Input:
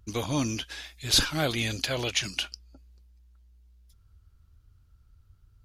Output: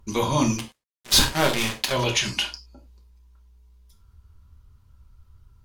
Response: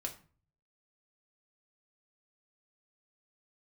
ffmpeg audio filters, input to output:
-filter_complex "[0:a]equalizer=frequency=980:width_type=o:width=0.26:gain=12.5,asplit=3[link_01][link_02][link_03];[link_01]afade=type=out:start_time=0.56:duration=0.02[link_04];[link_02]acrusher=bits=3:mix=0:aa=0.5,afade=type=in:start_time=0.56:duration=0.02,afade=type=out:start_time=1.91:duration=0.02[link_05];[link_03]afade=type=in:start_time=1.91:duration=0.02[link_06];[link_04][link_05][link_06]amix=inputs=3:normalize=0[link_07];[1:a]atrim=start_sample=2205,atrim=end_sample=4410,asetrate=37044,aresample=44100[link_08];[link_07][link_08]afir=irnorm=-1:irlink=0,volume=5dB"

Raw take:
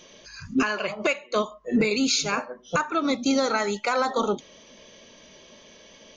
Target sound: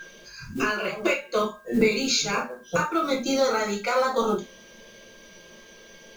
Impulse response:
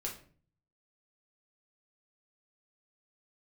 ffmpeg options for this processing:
-filter_complex "[0:a]aeval=exprs='val(0)+0.0178*sin(2*PI*1600*n/s)':channel_layout=same,acrusher=bits=7:mode=log:mix=0:aa=0.000001[link_01];[1:a]atrim=start_sample=2205,atrim=end_sample=4410[link_02];[link_01][link_02]afir=irnorm=-1:irlink=0"

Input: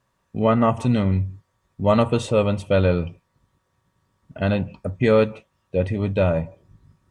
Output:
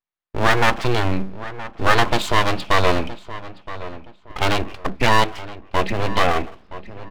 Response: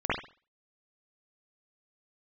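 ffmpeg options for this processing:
-filter_complex "[0:a]agate=range=-33dB:threshold=-50dB:ratio=3:detection=peak,asplit=2[link_01][link_02];[link_02]acompressor=threshold=-25dB:ratio=6,volume=1dB[link_03];[link_01][link_03]amix=inputs=2:normalize=0,aresample=11025,aresample=44100,aeval=exprs='abs(val(0))':channel_layout=same,tiltshelf=frequency=860:gain=-4.5,asplit=2[link_04][link_05];[link_05]adelay=970,lowpass=frequency=2500:poles=1,volume=-14.5dB,asplit=2[link_06][link_07];[link_07]adelay=970,lowpass=frequency=2500:poles=1,volume=0.3,asplit=2[link_08][link_09];[link_09]adelay=970,lowpass=frequency=2500:poles=1,volume=0.3[link_10];[link_06][link_08][link_10]amix=inputs=3:normalize=0[link_11];[link_04][link_11]amix=inputs=2:normalize=0,volume=3dB"

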